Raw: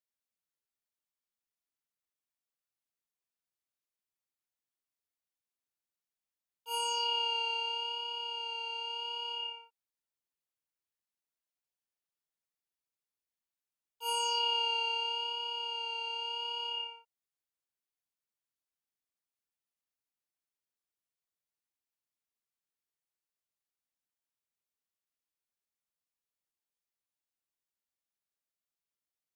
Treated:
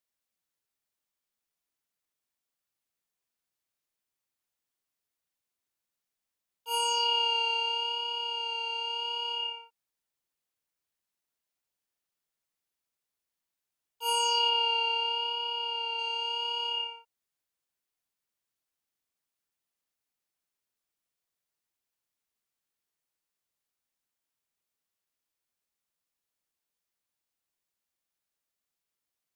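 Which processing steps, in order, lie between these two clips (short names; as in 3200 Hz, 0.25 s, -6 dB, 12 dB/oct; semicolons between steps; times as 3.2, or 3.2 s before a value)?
14.49–15.99 bell 7200 Hz -10.5 dB 0.76 oct; gain +5 dB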